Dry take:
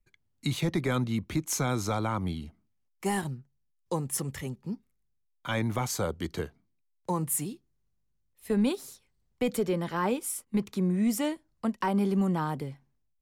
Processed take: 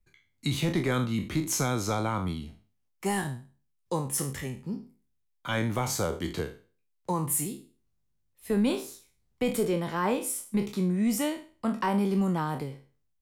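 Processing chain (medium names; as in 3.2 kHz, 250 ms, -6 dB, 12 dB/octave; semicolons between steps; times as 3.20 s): spectral sustain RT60 0.38 s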